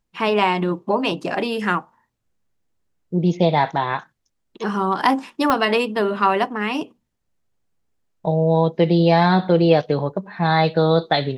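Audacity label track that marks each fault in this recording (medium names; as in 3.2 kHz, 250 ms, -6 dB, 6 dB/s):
5.500000	5.500000	pop -5 dBFS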